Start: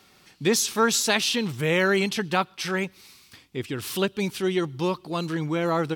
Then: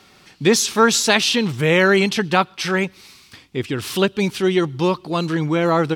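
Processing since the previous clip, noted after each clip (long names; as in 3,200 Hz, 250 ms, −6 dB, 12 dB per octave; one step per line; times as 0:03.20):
high-shelf EQ 11,000 Hz −11 dB
level +7 dB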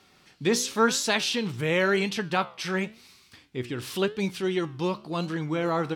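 flanger 0.94 Hz, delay 9.9 ms, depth 7.5 ms, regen +79%
level −4.5 dB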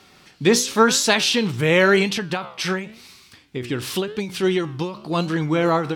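every ending faded ahead of time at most 110 dB per second
level +8 dB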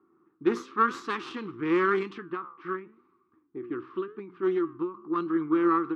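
low-pass that shuts in the quiet parts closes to 730 Hz, open at −12.5 dBFS
harmonic generator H 4 −12 dB, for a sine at −2.5 dBFS
pair of resonant band-passes 630 Hz, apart 1.8 octaves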